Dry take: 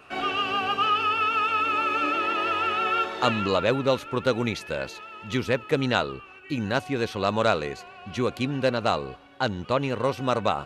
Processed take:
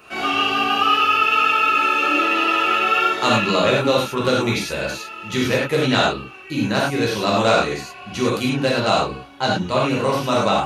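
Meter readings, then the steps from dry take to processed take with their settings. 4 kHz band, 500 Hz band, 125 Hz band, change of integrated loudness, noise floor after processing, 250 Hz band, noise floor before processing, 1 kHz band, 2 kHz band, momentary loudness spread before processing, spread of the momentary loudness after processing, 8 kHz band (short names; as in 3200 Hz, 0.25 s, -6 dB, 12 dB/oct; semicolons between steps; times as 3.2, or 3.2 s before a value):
+8.5 dB, +5.5 dB, +5.5 dB, +7.0 dB, -39 dBFS, +7.0 dB, -47 dBFS, +6.5 dB, +8.0 dB, 9 LU, 10 LU, +12.0 dB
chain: high shelf 5500 Hz +10.5 dB; notch 8000 Hz, Q 14; non-linear reverb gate 0.13 s flat, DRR -5 dB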